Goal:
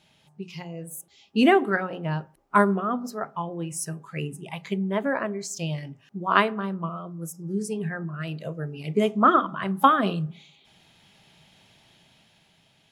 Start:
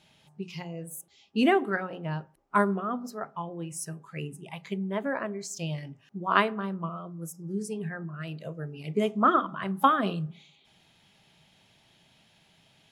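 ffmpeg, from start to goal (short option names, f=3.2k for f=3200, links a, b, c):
-af "dynaudnorm=f=220:g=9:m=5dB"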